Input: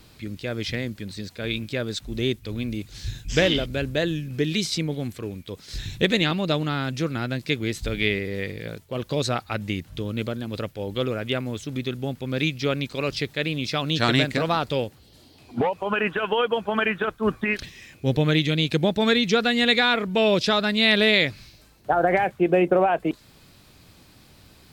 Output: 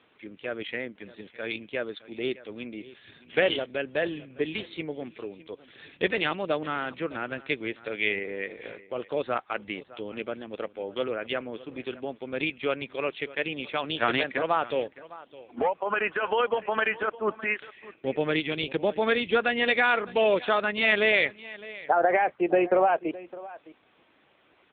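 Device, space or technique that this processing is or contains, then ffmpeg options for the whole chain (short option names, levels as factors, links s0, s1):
satellite phone: -filter_complex "[0:a]asettb=1/sr,asplit=3[s0][s1][s2];[s0]atrim=end=7.784[s3];[s1]atrim=start=7.78:end=8.18,asetpts=PTS-STARTPTS,afade=t=in:d=0.004:c=qsin,afade=t=out:st=0.396:d=0.004:c=qsin,asubboost=boost=11:cutoff=160[s4];[s2]atrim=start=8.176[s5];[s3][s4]acrossfade=d=0.004:c1=hsin:c2=qsin[s6];[s6][s5]acrossfade=d=0.004:c1=qsin:c2=hsin,highpass=400,lowpass=3100,aecho=1:1:610:0.119" -ar 8000 -c:a libopencore_amrnb -b:a 6700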